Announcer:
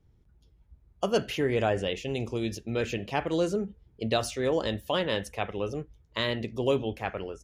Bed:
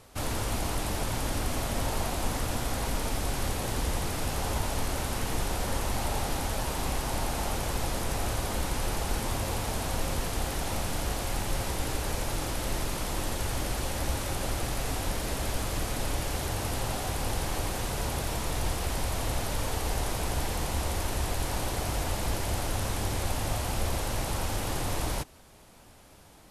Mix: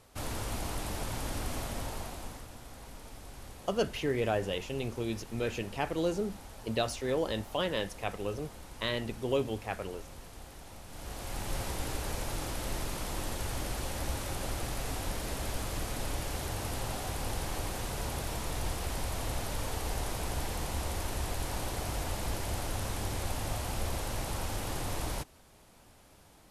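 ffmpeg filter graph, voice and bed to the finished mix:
-filter_complex "[0:a]adelay=2650,volume=-4dB[a];[1:a]volume=7.5dB,afade=t=out:st=1.56:d=0.93:silence=0.251189,afade=t=in:st=10.87:d=0.69:silence=0.223872[b];[a][b]amix=inputs=2:normalize=0"

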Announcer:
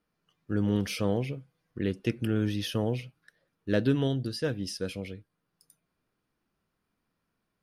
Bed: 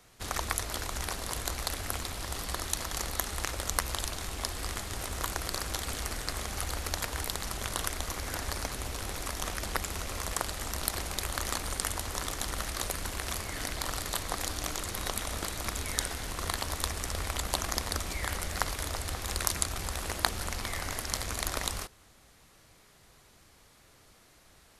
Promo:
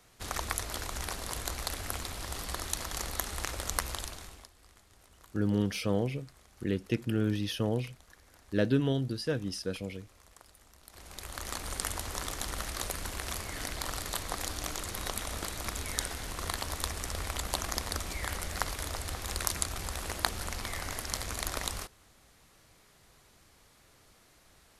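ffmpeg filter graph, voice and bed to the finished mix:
-filter_complex "[0:a]adelay=4850,volume=-1.5dB[a];[1:a]volume=20dB,afade=t=out:st=3.83:d=0.66:silence=0.0794328,afade=t=in:st=10.87:d=0.95:silence=0.0794328[b];[a][b]amix=inputs=2:normalize=0"

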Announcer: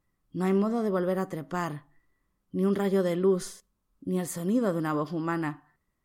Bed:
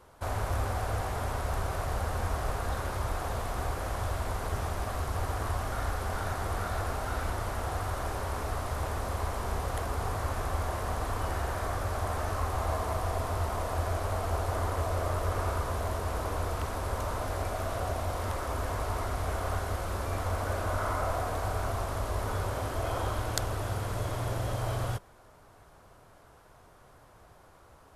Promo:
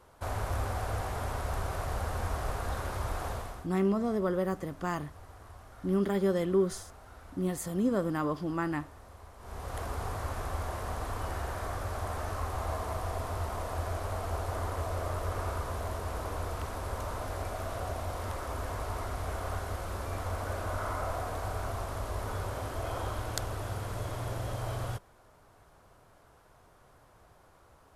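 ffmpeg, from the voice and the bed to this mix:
-filter_complex "[0:a]adelay=3300,volume=-2.5dB[a];[1:a]volume=13dB,afade=t=out:st=3.28:d=0.39:silence=0.149624,afade=t=in:st=9.38:d=0.45:silence=0.177828[b];[a][b]amix=inputs=2:normalize=0"

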